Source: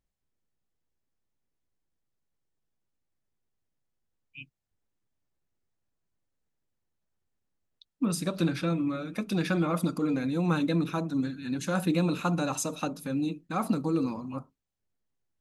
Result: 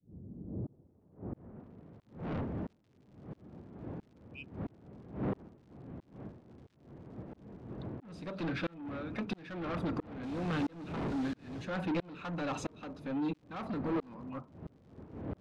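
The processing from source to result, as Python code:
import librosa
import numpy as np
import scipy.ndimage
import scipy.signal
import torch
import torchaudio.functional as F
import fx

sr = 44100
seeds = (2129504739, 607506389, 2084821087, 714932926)

y = fx.dmg_wind(x, sr, seeds[0], corner_hz=200.0, level_db=-32.0)
y = scipy.signal.sosfilt(scipy.signal.butter(2, 85.0, 'highpass', fs=sr, output='sos'), y)
y = fx.bass_treble(y, sr, bass_db=-4, treble_db=-12)
y = fx.quant_companded(y, sr, bits=4, at=(10.23, 11.65))
y = 10.0 ** (-32.5 / 20.0) * np.tanh(y / 10.0 ** (-32.5 / 20.0))
y = fx.tremolo_shape(y, sr, shape='saw_up', hz=1.5, depth_pct=100)
y = fx.dmg_crackle(y, sr, seeds[1], per_s=140.0, level_db=-60.0)
y = fx.filter_sweep_lowpass(y, sr, from_hz=260.0, to_hz=4700.0, start_s=0.34, end_s=2.12, q=0.72)
y = y * librosa.db_to_amplitude(4.0)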